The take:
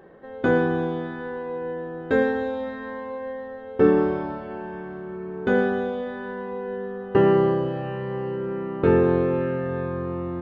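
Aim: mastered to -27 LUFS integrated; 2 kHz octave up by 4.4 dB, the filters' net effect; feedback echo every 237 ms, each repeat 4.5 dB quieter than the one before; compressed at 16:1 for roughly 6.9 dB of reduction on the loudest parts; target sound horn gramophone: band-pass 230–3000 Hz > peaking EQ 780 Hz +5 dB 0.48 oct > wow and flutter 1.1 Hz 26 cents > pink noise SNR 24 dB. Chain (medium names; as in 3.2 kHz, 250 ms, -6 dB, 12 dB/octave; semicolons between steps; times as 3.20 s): peaking EQ 2 kHz +6.5 dB; compression 16:1, threshold -19 dBFS; band-pass 230–3000 Hz; peaking EQ 780 Hz +5 dB 0.48 oct; feedback delay 237 ms, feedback 60%, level -4.5 dB; wow and flutter 1.1 Hz 26 cents; pink noise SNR 24 dB; trim -2 dB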